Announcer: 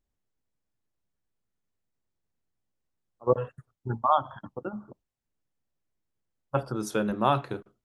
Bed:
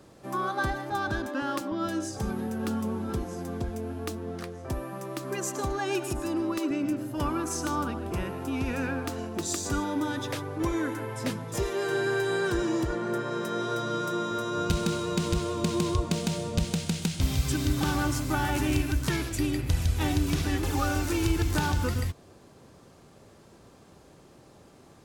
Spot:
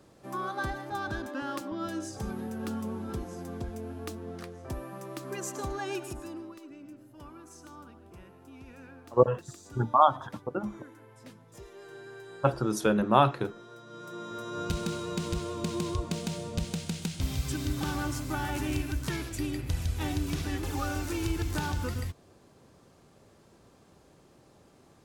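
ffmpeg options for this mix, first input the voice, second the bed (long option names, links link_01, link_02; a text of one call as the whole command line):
ffmpeg -i stem1.wav -i stem2.wav -filter_complex "[0:a]adelay=5900,volume=2.5dB[link_01];[1:a]volume=9.5dB,afade=type=out:start_time=5.82:duration=0.77:silence=0.188365,afade=type=in:start_time=13.86:duration=0.84:silence=0.199526[link_02];[link_01][link_02]amix=inputs=2:normalize=0" out.wav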